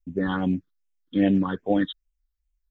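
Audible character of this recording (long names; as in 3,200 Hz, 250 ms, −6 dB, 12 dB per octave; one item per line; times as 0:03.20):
phaser sweep stages 6, 2.5 Hz, lowest notch 640–1,300 Hz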